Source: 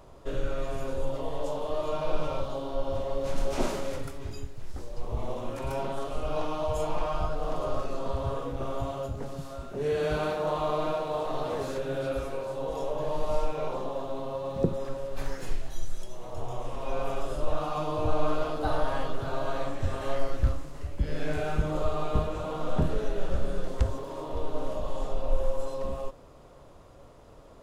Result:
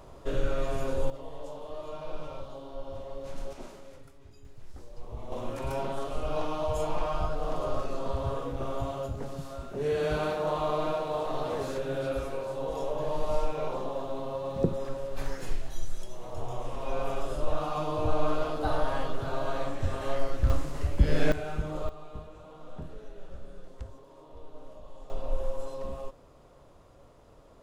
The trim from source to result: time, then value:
+2 dB
from 1.10 s -9 dB
from 3.53 s -16 dB
from 4.45 s -8 dB
from 5.32 s -0.5 dB
from 20.50 s +6.5 dB
from 21.32 s -5 dB
from 21.89 s -15.5 dB
from 25.10 s -4 dB

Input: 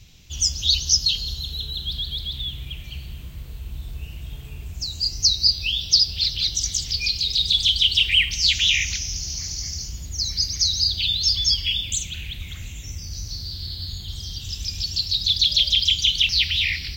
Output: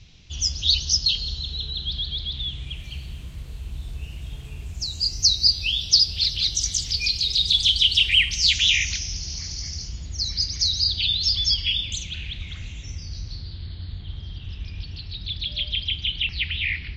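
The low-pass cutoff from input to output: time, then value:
low-pass 24 dB/octave
2.35 s 5.6 kHz
2.83 s 12 kHz
8.16 s 12 kHz
9.18 s 5.5 kHz
12.94 s 5.5 kHz
13.67 s 2.7 kHz

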